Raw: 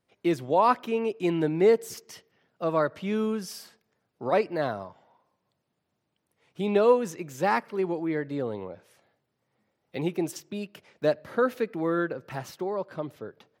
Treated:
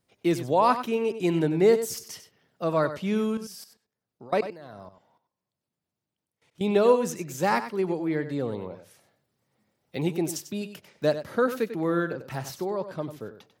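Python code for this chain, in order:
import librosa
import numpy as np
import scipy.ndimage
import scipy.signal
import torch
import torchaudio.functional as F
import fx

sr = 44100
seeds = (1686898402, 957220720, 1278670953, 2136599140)

y = fx.bass_treble(x, sr, bass_db=4, treble_db=7)
y = fx.level_steps(y, sr, step_db=22, at=(3.37, 6.61))
y = y + 10.0 ** (-11.5 / 20.0) * np.pad(y, (int(95 * sr / 1000.0), 0))[:len(y)]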